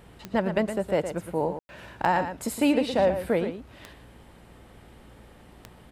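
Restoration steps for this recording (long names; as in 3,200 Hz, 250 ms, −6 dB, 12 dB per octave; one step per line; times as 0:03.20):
click removal
hum removal 58.6 Hz, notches 5
ambience match 0:01.59–0:01.69
echo removal 115 ms −9.5 dB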